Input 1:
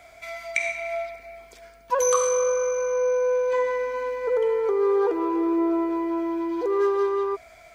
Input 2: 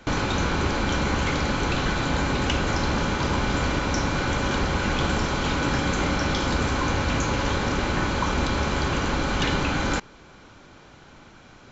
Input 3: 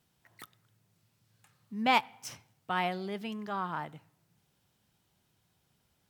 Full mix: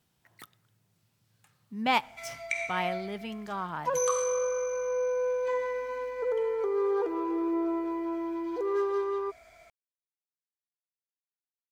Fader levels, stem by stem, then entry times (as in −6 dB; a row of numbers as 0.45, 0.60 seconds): −6.5 dB, muted, 0.0 dB; 1.95 s, muted, 0.00 s